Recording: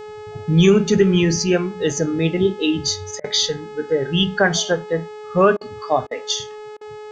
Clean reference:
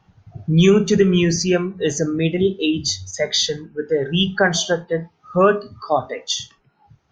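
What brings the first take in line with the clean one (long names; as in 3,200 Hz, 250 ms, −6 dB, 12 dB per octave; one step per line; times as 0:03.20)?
hum removal 424.4 Hz, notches 19
repair the gap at 0:03.20/0:05.57/0:06.07/0:06.77, 40 ms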